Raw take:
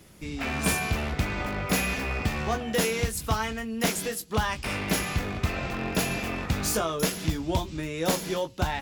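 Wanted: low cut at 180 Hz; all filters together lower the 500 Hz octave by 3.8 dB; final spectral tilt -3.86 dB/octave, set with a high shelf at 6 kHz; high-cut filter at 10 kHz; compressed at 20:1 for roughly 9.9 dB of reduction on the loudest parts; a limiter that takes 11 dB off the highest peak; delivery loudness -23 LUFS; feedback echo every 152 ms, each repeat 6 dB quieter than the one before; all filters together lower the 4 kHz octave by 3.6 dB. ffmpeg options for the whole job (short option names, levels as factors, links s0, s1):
-af "highpass=180,lowpass=10000,equalizer=f=500:t=o:g=-4.5,equalizer=f=4000:t=o:g=-3.5,highshelf=f=6000:g=-3.5,acompressor=threshold=0.0224:ratio=20,alimiter=level_in=2.51:limit=0.0631:level=0:latency=1,volume=0.398,aecho=1:1:152|304|456|608|760|912:0.501|0.251|0.125|0.0626|0.0313|0.0157,volume=6.68"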